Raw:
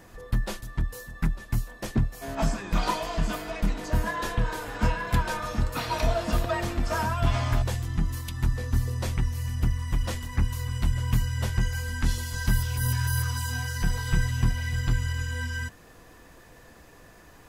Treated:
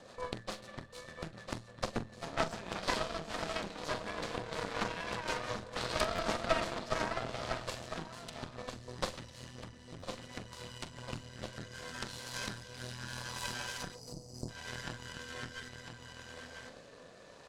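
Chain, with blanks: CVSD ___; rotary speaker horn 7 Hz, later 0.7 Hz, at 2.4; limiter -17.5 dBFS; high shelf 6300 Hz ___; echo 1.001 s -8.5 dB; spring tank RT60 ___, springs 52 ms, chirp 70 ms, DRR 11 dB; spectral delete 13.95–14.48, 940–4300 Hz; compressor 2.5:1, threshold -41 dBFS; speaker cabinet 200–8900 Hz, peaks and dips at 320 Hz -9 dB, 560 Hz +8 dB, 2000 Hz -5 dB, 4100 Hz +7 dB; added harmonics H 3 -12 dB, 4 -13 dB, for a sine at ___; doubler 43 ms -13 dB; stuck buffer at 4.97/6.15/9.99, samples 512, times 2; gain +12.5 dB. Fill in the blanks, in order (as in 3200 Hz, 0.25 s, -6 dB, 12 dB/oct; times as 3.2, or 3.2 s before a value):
64 kbps, -6 dB, 2.1 s, -26 dBFS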